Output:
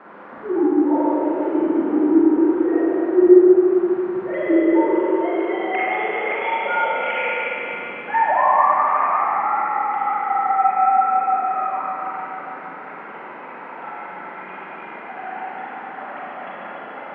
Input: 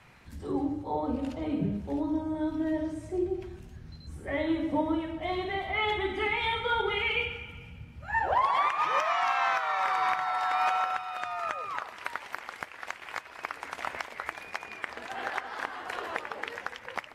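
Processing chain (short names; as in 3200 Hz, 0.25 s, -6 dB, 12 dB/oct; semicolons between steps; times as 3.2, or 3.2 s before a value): sine-wave speech; tilt shelf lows +7.5 dB, about 710 Hz; on a send: thinning echo 0.144 s, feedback 80%, high-pass 600 Hz, level -10 dB; on the sum: band noise 190–1500 Hz -49 dBFS; treble ducked by the level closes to 1300 Hz, closed at -21 dBFS; Schroeder reverb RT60 3.4 s, combs from 33 ms, DRR -7.5 dB; gain +3 dB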